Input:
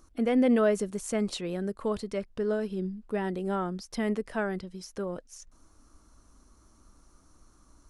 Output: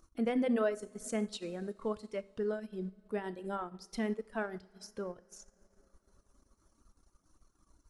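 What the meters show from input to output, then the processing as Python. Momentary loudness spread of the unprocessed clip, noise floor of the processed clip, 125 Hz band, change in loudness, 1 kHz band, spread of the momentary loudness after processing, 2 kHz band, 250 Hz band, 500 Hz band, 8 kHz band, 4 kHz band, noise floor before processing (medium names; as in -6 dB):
13 LU, -76 dBFS, -9.5 dB, -7.0 dB, -6.0 dB, 12 LU, -6.0 dB, -7.5 dB, -6.5 dB, -6.5 dB, -6.5 dB, -61 dBFS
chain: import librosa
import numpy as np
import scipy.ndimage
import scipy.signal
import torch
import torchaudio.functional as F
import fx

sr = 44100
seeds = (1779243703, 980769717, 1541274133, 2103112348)

y = fx.dereverb_blind(x, sr, rt60_s=1.7)
y = fx.rev_double_slope(y, sr, seeds[0], early_s=0.57, late_s=4.3, knee_db=-18, drr_db=10.5)
y = fx.transient(y, sr, attack_db=0, sustain_db=-8)
y = y * 10.0 ** (-5.0 / 20.0)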